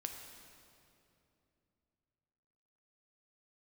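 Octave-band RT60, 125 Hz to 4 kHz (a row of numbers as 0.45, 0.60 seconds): 3.8, 3.6, 3.1, 2.5, 2.3, 2.1 seconds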